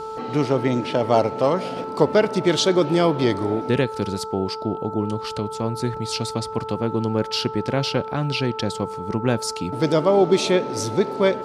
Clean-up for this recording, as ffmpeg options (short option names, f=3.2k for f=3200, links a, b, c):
-af "bandreject=f=439.9:t=h:w=4,bandreject=f=879.8:t=h:w=4,bandreject=f=1.3197k:t=h:w=4"